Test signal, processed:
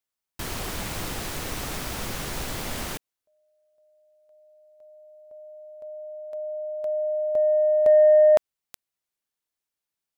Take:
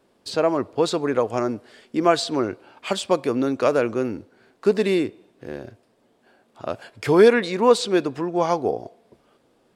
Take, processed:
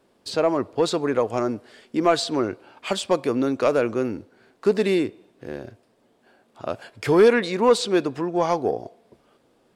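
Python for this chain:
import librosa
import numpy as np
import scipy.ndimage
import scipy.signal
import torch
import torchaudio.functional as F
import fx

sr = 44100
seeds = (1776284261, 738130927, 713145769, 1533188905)

y = 10.0 ** (-6.5 / 20.0) * np.tanh(x / 10.0 ** (-6.5 / 20.0))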